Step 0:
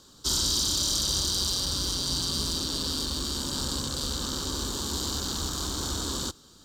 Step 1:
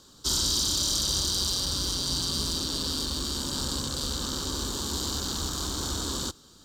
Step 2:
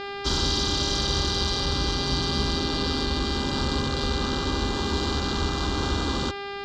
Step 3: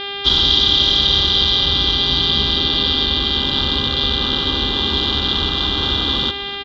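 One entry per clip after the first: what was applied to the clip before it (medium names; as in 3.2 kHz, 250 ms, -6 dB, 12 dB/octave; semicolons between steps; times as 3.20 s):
no audible change
mains buzz 400 Hz, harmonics 13, -40 dBFS -3 dB/octave; distance through air 200 m; trim +7.5 dB
resonant low-pass 3.4 kHz, resonance Q 9.7; feedback delay 254 ms, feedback 48%, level -16 dB; trim +2.5 dB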